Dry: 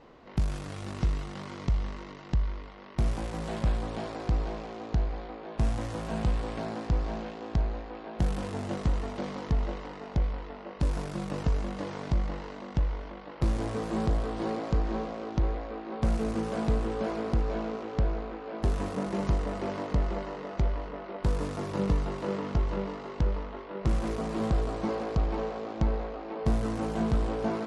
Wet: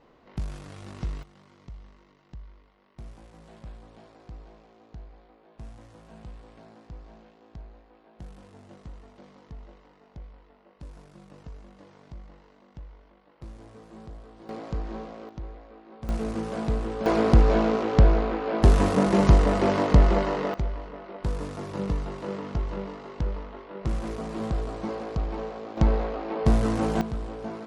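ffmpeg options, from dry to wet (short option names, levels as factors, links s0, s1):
-af "asetnsamples=n=441:p=0,asendcmd='1.23 volume volume -16dB;14.49 volume volume -4.5dB;15.29 volume volume -11dB;16.09 volume volume 0dB;17.06 volume volume 10.5dB;20.54 volume volume -1.5dB;25.77 volume volume 6dB;27.01 volume volume -5.5dB',volume=0.596"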